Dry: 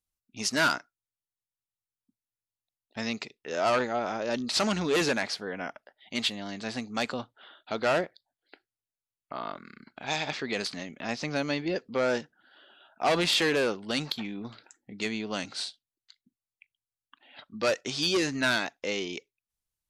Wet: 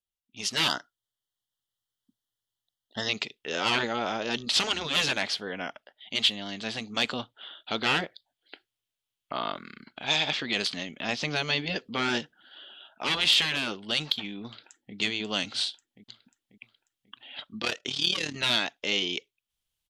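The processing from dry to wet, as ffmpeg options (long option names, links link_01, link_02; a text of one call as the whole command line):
ffmpeg -i in.wav -filter_complex "[0:a]asettb=1/sr,asplit=3[link_01][link_02][link_03];[link_01]atrim=end=0.684[link_04];[link_02]atrim=start=0.68:end=3.09,asetpts=PTS-STARTPTS,afade=type=in:duration=0.004:curve=qsin,afade=type=out:start_time=2.406:duration=0.004:curve=qsin,asuperstop=centerf=2400:order=8:qfactor=2.8[link_05];[link_03]atrim=start=3.086[link_06];[link_04][link_05]acrossfade=duration=0.004:curve1=hsin:curve2=qsin[link_07];[link_07][link_06]acrossfade=duration=0.004:curve1=qsin:curve2=hsin,asplit=2[link_08][link_09];[link_09]afade=type=in:start_time=14.46:duration=0.01,afade=type=out:start_time=14.95:duration=0.01,aecho=0:1:540|1080|1620|2160|2700:0.501187|0.225534|0.10149|0.0456707|0.0205518[link_10];[link_08][link_10]amix=inputs=2:normalize=0,asettb=1/sr,asplit=3[link_11][link_12][link_13];[link_11]atrim=end=17.594[link_14];[link_12]atrim=start=17.59:end=18.36,asetpts=PTS-STARTPTS,afade=type=in:duration=0.004:curve=qsin,afade=type=out:start_time=0.766:duration=0.004:curve=qsin,tremolo=f=37:d=0.788[link_15];[link_13]atrim=start=18.356[link_16];[link_14][link_15]acrossfade=duration=0.004:curve1=hsin:curve2=qsin[link_17];[link_17][link_16]acrossfade=duration=0.004:curve1=qsin:curve2=hsin,afftfilt=real='re*lt(hypot(re,im),0.224)':imag='im*lt(hypot(re,im),0.224)':win_size=1024:overlap=0.75,equalizer=frequency=3200:width_type=o:width=0.59:gain=11.5,dynaudnorm=framelen=200:gausssize=5:maxgain=13dB,volume=-9dB" out.wav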